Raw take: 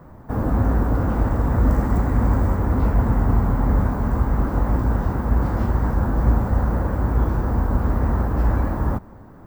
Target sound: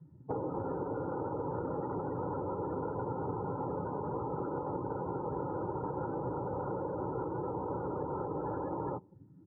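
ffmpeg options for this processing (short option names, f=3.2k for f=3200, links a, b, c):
-af "lowpass=f=1.4k:p=1,afftdn=nr=34:nf=-32,highpass=f=160:w=0.5412,highpass=f=160:w=1.3066,aecho=1:1:2.2:0.99,acompressor=threshold=-35dB:ratio=10,volume=2dB"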